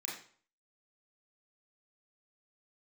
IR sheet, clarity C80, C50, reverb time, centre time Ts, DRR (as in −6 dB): 8.5 dB, 4.0 dB, 0.50 s, 41 ms, −4.5 dB